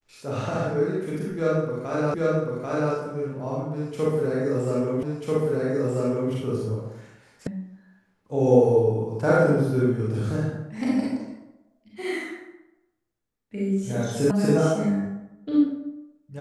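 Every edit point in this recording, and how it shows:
2.14 repeat of the last 0.79 s
5.03 repeat of the last 1.29 s
7.47 sound cut off
14.31 sound cut off

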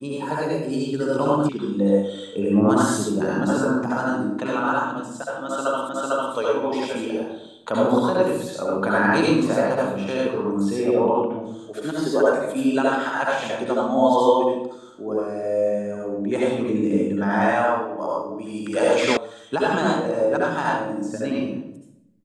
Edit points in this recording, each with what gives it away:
1.49 sound cut off
5.89 repeat of the last 0.45 s
19.17 sound cut off

